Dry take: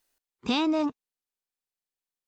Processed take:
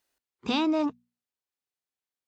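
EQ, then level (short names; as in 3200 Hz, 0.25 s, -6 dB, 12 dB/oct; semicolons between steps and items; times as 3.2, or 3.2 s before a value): HPF 42 Hz; high shelf 6300 Hz -6 dB; notches 60/120/180/240 Hz; 0.0 dB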